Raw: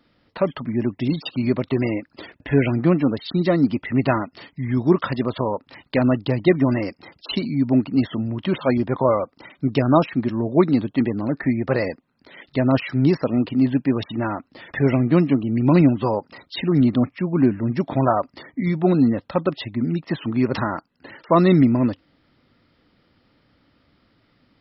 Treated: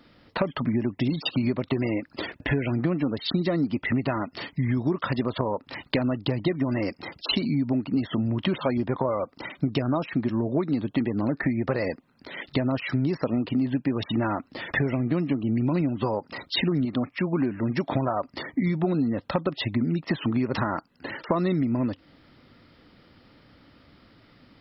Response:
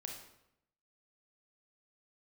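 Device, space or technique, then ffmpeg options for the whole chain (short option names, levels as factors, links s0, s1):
serial compression, leveller first: -filter_complex "[0:a]asettb=1/sr,asplit=3[s0][s1][s2];[s0]atrim=end=16.854[s3];[s1]atrim=start=16.85:end=17.95,asetpts=PTS-STARTPTS,afade=t=in:d=0.004:c=qsin,afade=t=out:st=1.096:d=0.004:c=qsin,lowshelf=f=340:g=-7.5[s4];[s2]atrim=start=17.946[s5];[s3][s4]acrossfade=d=0.004:c1=hsin:c2=qsin[s6];[s6][s5]acrossfade=d=0.004:c1=qsin:c2=hsin,acompressor=threshold=0.112:ratio=2,acompressor=threshold=0.0398:ratio=6,volume=2"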